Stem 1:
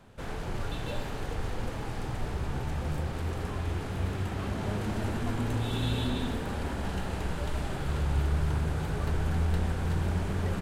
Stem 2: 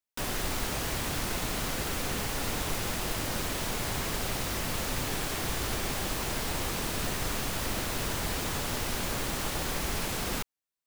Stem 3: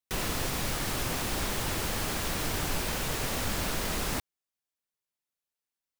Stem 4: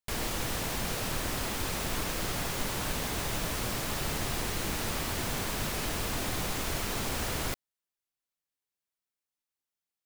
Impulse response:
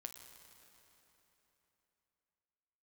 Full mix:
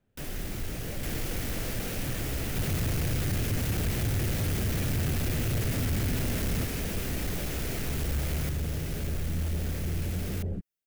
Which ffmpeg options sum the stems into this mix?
-filter_complex "[0:a]afwtdn=0.0316,volume=-0.5dB[link_01];[1:a]volume=-3dB[link_02];[2:a]equalizer=frequency=100:width=0.86:gain=14.5,adelay=2450,volume=2dB[link_03];[3:a]adelay=950,volume=1.5dB[link_04];[link_01][link_02][link_03][link_04]amix=inputs=4:normalize=0,asoftclip=type=tanh:threshold=-23.5dB,equalizer=frequency=1000:width_type=o:width=1:gain=-11,equalizer=frequency=4000:width_type=o:width=1:gain=-5,equalizer=frequency=8000:width_type=o:width=1:gain=-4"

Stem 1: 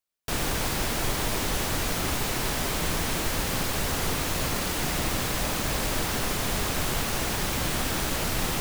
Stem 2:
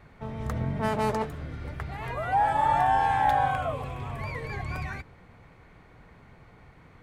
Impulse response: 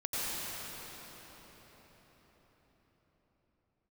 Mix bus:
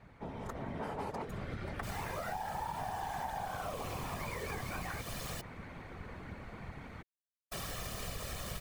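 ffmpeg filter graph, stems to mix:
-filter_complex "[0:a]aecho=1:1:1.7:0.87,adelay=1550,volume=-18dB,asplit=3[link_01][link_02][link_03];[link_01]atrim=end=5.41,asetpts=PTS-STARTPTS,afade=type=out:start_time=5.406:duration=0.004:curve=hsin[link_04];[link_02]atrim=start=5.41:end=7.52,asetpts=PTS-STARTPTS,volume=0[link_05];[link_03]atrim=start=7.52,asetpts=PTS-STARTPTS,afade=type=in:duration=0.004:curve=hsin[link_06];[link_04][link_05][link_06]concat=n=3:v=0:a=1[link_07];[1:a]acrossover=split=250|1700[link_08][link_09][link_10];[link_08]acompressor=threshold=-41dB:ratio=4[link_11];[link_09]acompressor=threshold=-33dB:ratio=4[link_12];[link_10]acompressor=threshold=-48dB:ratio=4[link_13];[link_11][link_12][link_13]amix=inputs=3:normalize=0,volume=1dB[link_14];[link_07][link_14]amix=inputs=2:normalize=0,dynaudnorm=framelen=110:gausssize=17:maxgain=11dB,afftfilt=real='hypot(re,im)*cos(2*PI*random(0))':imag='hypot(re,im)*sin(2*PI*random(1))':win_size=512:overlap=0.75,acompressor=threshold=-37dB:ratio=6"

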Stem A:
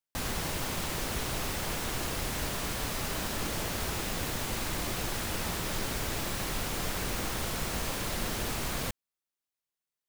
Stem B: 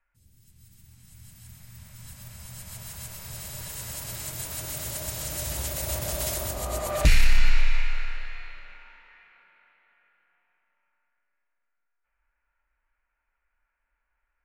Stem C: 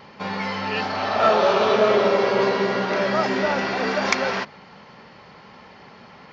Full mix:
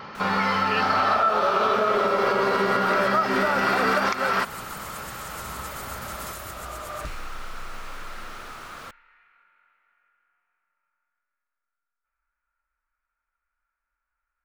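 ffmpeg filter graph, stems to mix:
ffmpeg -i stem1.wav -i stem2.wav -i stem3.wav -filter_complex "[0:a]asplit=2[link_01][link_02];[link_02]highpass=frequency=720:poles=1,volume=15dB,asoftclip=type=tanh:threshold=-18.5dB[link_03];[link_01][link_03]amix=inputs=2:normalize=0,lowpass=frequency=2500:poles=1,volume=-6dB,volume=-12dB[link_04];[1:a]acompressor=threshold=-25dB:ratio=6,volume=-8.5dB[link_05];[2:a]acompressor=threshold=-21dB:ratio=6,volume=3dB[link_06];[link_04][link_05][link_06]amix=inputs=3:normalize=0,equalizer=frequency=1300:width_type=o:width=0.41:gain=12,alimiter=limit=-12dB:level=0:latency=1:release=230" out.wav

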